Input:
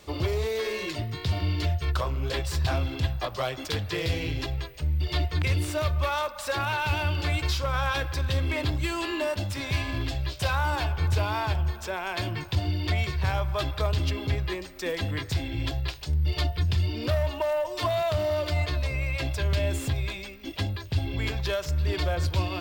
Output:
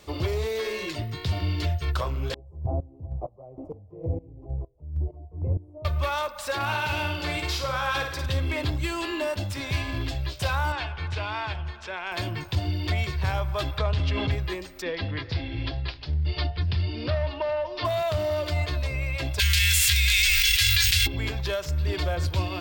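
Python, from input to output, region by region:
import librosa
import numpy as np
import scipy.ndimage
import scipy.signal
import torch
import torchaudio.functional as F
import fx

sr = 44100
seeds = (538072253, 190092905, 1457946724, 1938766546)

y = fx.chain(x, sr, fx.cheby2_lowpass(hz=1500.0, order=4, stop_db=40),
    fx.volume_shaper(bpm=130, per_beat=1, depth_db=-19, release_ms=311.0, shape='slow start'), at=(2.34, 5.85))
y = fx.chain(y, sr, fx.low_shelf(hz=99.0, db=-10.0),
    fx.clip_hard(threshold_db=-18.5),
    fx.room_flutter(wall_m=9.2, rt60_s=0.55), at=(6.55, 8.26))
y = fx.chain(y, sr, fx.lowpass(hz=2900.0, slope=12),
    fx.tilt_shelf(db=-7.0, hz=1400.0), at=(10.72, 12.12))
y = fx.chain(y, sr, fx.lowpass(hz=4200.0, slope=12),
    fx.peak_eq(hz=330.0, db=-9.5, octaves=0.41),
    fx.env_flatten(amount_pct=70), at=(13.78, 14.31))
y = fx.chain(y, sr, fx.ellip_lowpass(hz=4900.0, order=4, stop_db=60),
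    fx.echo_single(ms=409, db=-21.0), at=(14.82, 17.85))
y = fx.envelope_flatten(y, sr, power=0.6, at=(19.38, 21.06), fade=0.02)
y = fx.cheby2_bandstop(y, sr, low_hz=240.0, high_hz=550.0, order=4, stop_db=80, at=(19.38, 21.06), fade=0.02)
y = fx.env_flatten(y, sr, amount_pct=100, at=(19.38, 21.06), fade=0.02)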